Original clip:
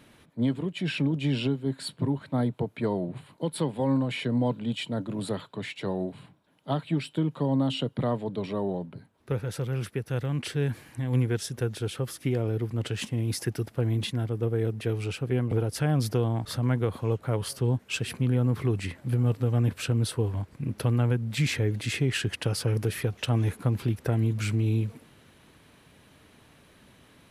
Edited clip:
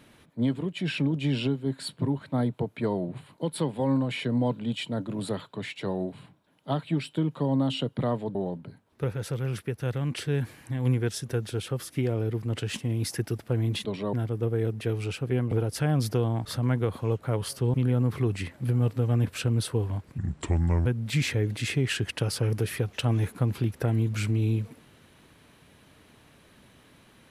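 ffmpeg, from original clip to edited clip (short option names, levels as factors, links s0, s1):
-filter_complex "[0:a]asplit=7[s0][s1][s2][s3][s4][s5][s6];[s0]atrim=end=8.352[s7];[s1]atrim=start=8.628:end=14.132[s8];[s2]atrim=start=8.348:end=8.632[s9];[s3]atrim=start=14.128:end=17.742[s10];[s4]atrim=start=18.178:end=20.624[s11];[s5]atrim=start=20.62:end=21.1,asetpts=PTS-STARTPTS,asetrate=31311,aresample=44100,atrim=end_sample=29814,asetpts=PTS-STARTPTS[s12];[s6]atrim=start=21.096[s13];[s7][s8]acrossfade=d=0.004:c1=hsin:c2=hsin[s14];[s14][s9]acrossfade=d=0.004:c1=hsin:c2=hsin[s15];[s15][s10]acrossfade=d=0.004:c1=hsin:c2=hsin[s16];[s16][s11]acrossfade=d=0.004:c1=hsin:c2=hsin[s17];[s17][s12]acrossfade=d=0.004:c1=hsin:c2=hsin[s18];[s18][s13]acrossfade=d=0.004:c1=hsin:c2=hsin"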